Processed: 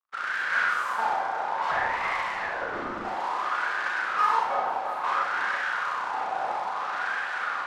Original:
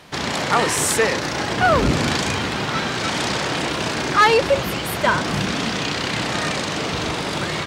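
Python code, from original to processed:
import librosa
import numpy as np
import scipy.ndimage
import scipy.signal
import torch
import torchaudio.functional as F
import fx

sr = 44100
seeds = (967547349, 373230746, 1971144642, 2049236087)

p1 = fx.notch(x, sr, hz=1200.0, q=22.0)
p2 = fx.quant_dither(p1, sr, seeds[0], bits=6, dither='none')
p3 = p1 + (p2 * librosa.db_to_amplitude(-8.5))
p4 = np.sign(p3) * np.maximum(np.abs(p3) - 10.0 ** (-39.0 / 20.0), 0.0)
p5 = fx.cheby_harmonics(p4, sr, harmonics=(3, 5, 8), levels_db=(-9, -33, -9), full_scale_db=-3.0)
p6 = fx.filter_lfo_bandpass(p5, sr, shape='sine', hz=0.59, low_hz=760.0, high_hz=1600.0, q=7.5)
p7 = fx.ring_mod(p6, sr, carrier_hz=470.0, at=(1.71, 3.05))
p8 = p7 + fx.echo_wet_bandpass(p7, sr, ms=340, feedback_pct=68, hz=780.0, wet_db=-8.5, dry=0)
p9 = fx.rev_schroeder(p8, sr, rt60_s=0.67, comb_ms=31, drr_db=-1.0)
y = p9 * librosa.db_to_amplitude(-2.0)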